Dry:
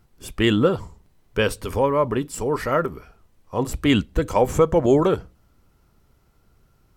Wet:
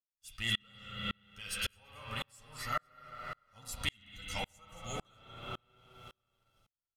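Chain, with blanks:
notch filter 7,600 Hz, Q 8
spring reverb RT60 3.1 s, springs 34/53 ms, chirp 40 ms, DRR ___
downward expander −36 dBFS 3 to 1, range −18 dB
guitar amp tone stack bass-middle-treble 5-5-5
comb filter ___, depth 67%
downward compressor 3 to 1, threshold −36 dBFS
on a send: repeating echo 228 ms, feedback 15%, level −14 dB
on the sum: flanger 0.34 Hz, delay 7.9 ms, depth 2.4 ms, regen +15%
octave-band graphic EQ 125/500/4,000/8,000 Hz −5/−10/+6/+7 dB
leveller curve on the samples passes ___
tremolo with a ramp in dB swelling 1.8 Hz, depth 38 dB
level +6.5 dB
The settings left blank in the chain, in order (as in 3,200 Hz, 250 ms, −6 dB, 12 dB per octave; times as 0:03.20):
0 dB, 1.5 ms, 1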